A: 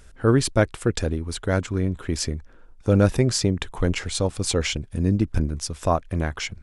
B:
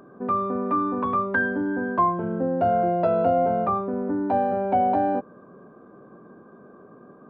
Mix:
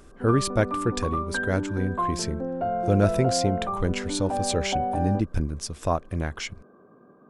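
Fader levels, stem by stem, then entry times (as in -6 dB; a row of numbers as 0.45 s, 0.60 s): -3.5 dB, -6.0 dB; 0.00 s, 0.00 s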